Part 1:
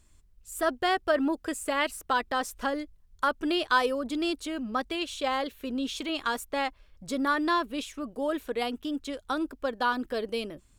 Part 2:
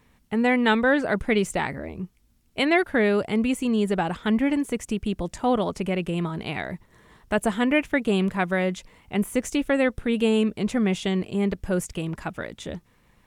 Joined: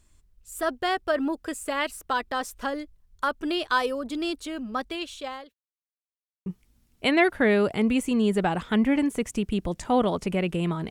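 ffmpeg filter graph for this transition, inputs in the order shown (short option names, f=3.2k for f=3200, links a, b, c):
-filter_complex "[0:a]apad=whole_dur=10.9,atrim=end=10.9,asplit=2[a][b];[a]atrim=end=5.54,asetpts=PTS-STARTPTS,afade=t=out:st=4.74:d=0.8:c=qsin[c];[b]atrim=start=5.54:end=6.46,asetpts=PTS-STARTPTS,volume=0[d];[1:a]atrim=start=2:end=6.44,asetpts=PTS-STARTPTS,afade=t=in:d=0.004:c=hsin[e];[c][d][e]concat=n=3:v=0:a=1"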